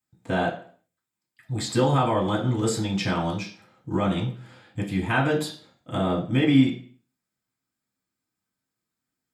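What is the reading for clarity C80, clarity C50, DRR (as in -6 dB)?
13.5 dB, 9.5 dB, -4.5 dB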